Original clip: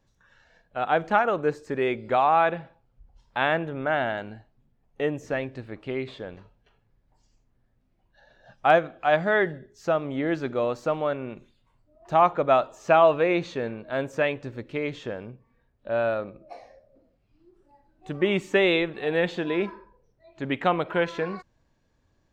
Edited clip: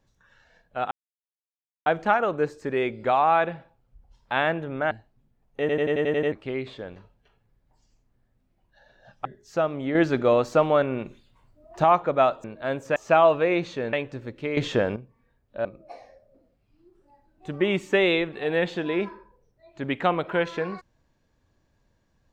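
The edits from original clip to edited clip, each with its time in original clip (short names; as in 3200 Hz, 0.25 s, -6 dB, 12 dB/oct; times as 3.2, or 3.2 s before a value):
0.91 insert silence 0.95 s
3.96–4.32 cut
5.01 stutter in place 0.09 s, 8 plays
8.66–9.56 cut
10.26–12.15 gain +6 dB
13.72–14.24 move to 12.75
14.88–15.27 gain +10.5 dB
15.96–16.26 cut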